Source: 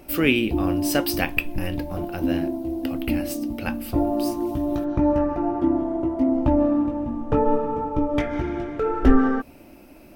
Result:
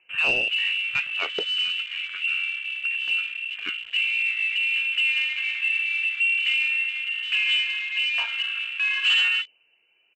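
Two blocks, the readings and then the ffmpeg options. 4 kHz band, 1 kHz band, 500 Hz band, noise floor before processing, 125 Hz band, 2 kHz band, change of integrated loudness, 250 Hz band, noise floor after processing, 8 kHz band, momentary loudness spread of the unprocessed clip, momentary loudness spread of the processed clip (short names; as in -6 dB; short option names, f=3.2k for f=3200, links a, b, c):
+14.0 dB, under -10 dB, under -15 dB, -47 dBFS, under -25 dB, +11.0 dB, +1.0 dB, under -30 dB, -64 dBFS, n/a, 9 LU, 7 LU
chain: -af "aphaser=in_gain=1:out_gain=1:delay=4.6:decay=0.31:speed=0.22:type=sinusoidal,lowpass=f=2.6k:t=q:w=0.5098,lowpass=f=2.6k:t=q:w=0.6013,lowpass=f=2.6k:t=q:w=0.9,lowpass=f=2.6k:t=q:w=2.563,afreqshift=-3000,aresample=16000,asoftclip=type=tanh:threshold=-15.5dB,aresample=44100,afwtdn=0.0282,volume=-1.5dB"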